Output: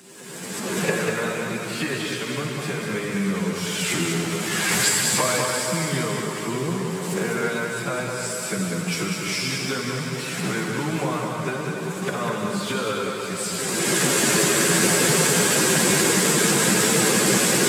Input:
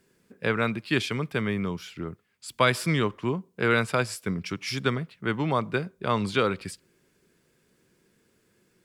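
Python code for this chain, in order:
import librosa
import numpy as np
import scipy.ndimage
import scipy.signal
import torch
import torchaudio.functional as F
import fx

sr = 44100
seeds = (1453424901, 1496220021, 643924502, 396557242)

p1 = fx.delta_mod(x, sr, bps=64000, step_db=-34.0)
p2 = fx.recorder_agc(p1, sr, target_db=-13.5, rise_db_per_s=50.0, max_gain_db=30)
p3 = fx.rev_plate(p2, sr, seeds[0], rt60_s=2.6, hf_ratio=0.85, predelay_ms=0, drr_db=0.5)
p4 = fx.leveller(p3, sr, passes=1)
p5 = fx.stretch_vocoder_free(p4, sr, factor=2.0)
p6 = scipy.signal.sosfilt(scipy.signal.butter(4, 130.0, 'highpass', fs=sr, output='sos'), p5)
p7 = fx.peak_eq(p6, sr, hz=7800.0, db=6.5, octaves=0.33)
p8 = p7 + fx.echo_single(p7, sr, ms=197, db=-5.5, dry=0)
y = p8 * 10.0 ** (-8.5 / 20.0)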